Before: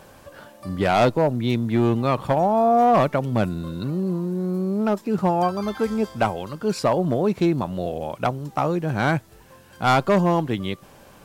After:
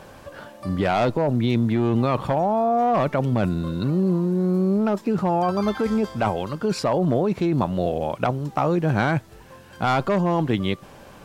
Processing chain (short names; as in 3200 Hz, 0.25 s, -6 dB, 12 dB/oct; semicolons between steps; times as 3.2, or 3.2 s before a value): high shelf 7600 Hz -8.5 dB; in parallel at +1 dB: negative-ratio compressor -23 dBFS, ratio -0.5; on the sum: gain -4.5 dB